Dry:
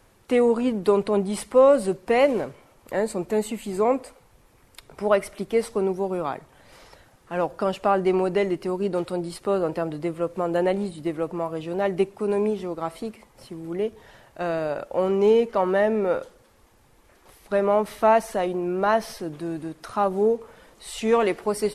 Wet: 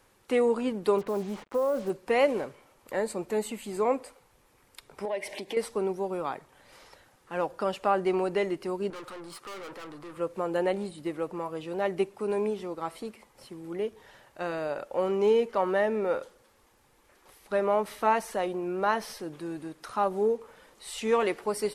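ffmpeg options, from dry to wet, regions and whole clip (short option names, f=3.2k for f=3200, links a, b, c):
-filter_complex "[0:a]asettb=1/sr,asplit=3[a][b][c];[a]atrim=end=0.984[d];[b]atrim=start=0.98:end=1.9,asetpts=PTS-STARTPTS,afade=t=in:d=0.004:c=qsin,afade=t=out:st=0.916:d=0.004:c=qsin,lowpass=1.5k,acompressor=threshold=-18dB:ratio=6:attack=3.2:release=140:knee=1:detection=peak,acrusher=bits=6:mix=0:aa=0.5[e];[c]atrim=start=1.896[f];[d][e]acrossfade=d=0.004:c1=hsin:c2=qsin[g];[g][f]acrossfade=d=0.004:c1=qsin:c2=hsin,asettb=1/sr,asplit=3[h][i][j];[h]atrim=end=5.054[k];[i]atrim=start=5.05:end=5.57,asetpts=PTS-STARTPTS,afade=t=in:d=0.004:c=qsin,afade=t=out:st=0.516:d=0.004:c=qsin,asuperstop=centerf=1300:order=4:qfactor=1.8,acompressor=threshold=-39dB:ratio=3:attack=3.2:release=140:knee=1:detection=peak,asplit=2[l][m];[m]highpass=f=720:p=1,volume=21dB,asoftclip=type=tanh:threshold=-12dB[n];[l][n]amix=inputs=2:normalize=0,lowpass=f=2.7k:p=1,volume=-6dB[o];[j]atrim=start=5.566[p];[k][o]acrossfade=d=0.004:c1=hsin:c2=qsin[q];[q][p]acrossfade=d=0.004:c1=qsin:c2=hsin,asettb=1/sr,asplit=3[r][s][t];[r]atrim=end=8.904[u];[s]atrim=start=8.9:end=10.17,asetpts=PTS-STARTPTS,afade=t=in:d=0.004:c=qsin,afade=t=out:st=1.266:d=0.004:c=qsin,highpass=110,equalizer=f=1.2k:t=o:w=0.72:g=12.5,aeval=exprs='(tanh(56.2*val(0)+0.45)-tanh(0.45))/56.2':c=same[v];[t]atrim=start=10.166[w];[u][v]acrossfade=d=0.004:c1=hsin:c2=qsin[x];[x][w]acrossfade=d=0.004:c1=qsin:c2=hsin,lowshelf=f=240:g=-8,bandreject=f=670:w=12,volume=-3dB"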